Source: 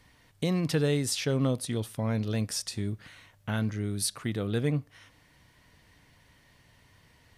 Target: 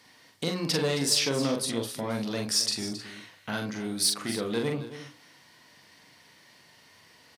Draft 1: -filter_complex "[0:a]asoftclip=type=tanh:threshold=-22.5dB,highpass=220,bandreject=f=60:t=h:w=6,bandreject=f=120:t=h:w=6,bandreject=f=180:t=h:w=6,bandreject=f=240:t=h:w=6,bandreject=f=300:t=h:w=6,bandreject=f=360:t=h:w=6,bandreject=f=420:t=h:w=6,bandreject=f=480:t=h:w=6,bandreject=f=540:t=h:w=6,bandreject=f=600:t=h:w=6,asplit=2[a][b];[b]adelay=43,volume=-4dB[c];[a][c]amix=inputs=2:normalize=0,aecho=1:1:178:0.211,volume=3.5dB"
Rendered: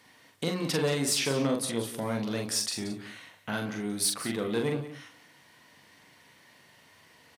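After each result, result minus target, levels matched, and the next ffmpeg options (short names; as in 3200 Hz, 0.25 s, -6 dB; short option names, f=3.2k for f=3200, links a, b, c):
echo 91 ms early; 4000 Hz band -3.0 dB
-filter_complex "[0:a]asoftclip=type=tanh:threshold=-22.5dB,highpass=220,bandreject=f=60:t=h:w=6,bandreject=f=120:t=h:w=6,bandreject=f=180:t=h:w=6,bandreject=f=240:t=h:w=6,bandreject=f=300:t=h:w=6,bandreject=f=360:t=h:w=6,bandreject=f=420:t=h:w=6,bandreject=f=480:t=h:w=6,bandreject=f=540:t=h:w=6,bandreject=f=600:t=h:w=6,asplit=2[a][b];[b]adelay=43,volume=-4dB[c];[a][c]amix=inputs=2:normalize=0,aecho=1:1:269:0.211,volume=3.5dB"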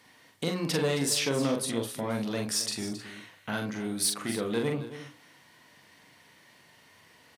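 4000 Hz band -3.0 dB
-filter_complex "[0:a]asoftclip=type=tanh:threshold=-22.5dB,highpass=220,equalizer=f=4.9k:w=2:g=6.5,bandreject=f=60:t=h:w=6,bandreject=f=120:t=h:w=6,bandreject=f=180:t=h:w=6,bandreject=f=240:t=h:w=6,bandreject=f=300:t=h:w=6,bandreject=f=360:t=h:w=6,bandreject=f=420:t=h:w=6,bandreject=f=480:t=h:w=6,bandreject=f=540:t=h:w=6,bandreject=f=600:t=h:w=6,asplit=2[a][b];[b]adelay=43,volume=-4dB[c];[a][c]amix=inputs=2:normalize=0,aecho=1:1:269:0.211,volume=3.5dB"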